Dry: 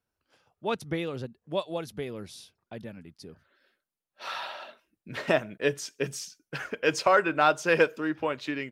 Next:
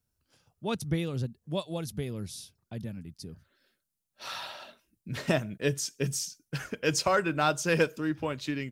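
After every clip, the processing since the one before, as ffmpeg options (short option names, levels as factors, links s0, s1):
-af "bass=f=250:g=14,treble=f=4000:g=12,volume=0.562"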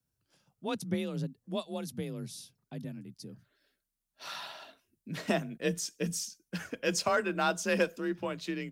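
-af "afreqshift=34,volume=0.708"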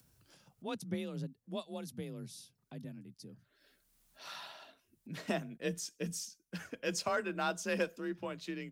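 -af "acompressor=mode=upward:threshold=0.00501:ratio=2.5,volume=0.531"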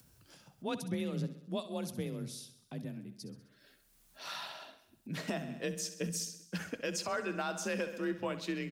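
-af "aecho=1:1:65|130|195|260|325|390:0.211|0.125|0.0736|0.0434|0.0256|0.0151,alimiter=level_in=1.88:limit=0.0631:level=0:latency=1:release=215,volume=0.531,volume=1.68"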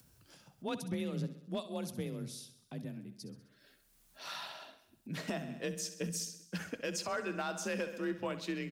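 -af "asoftclip=type=hard:threshold=0.0447,volume=0.891"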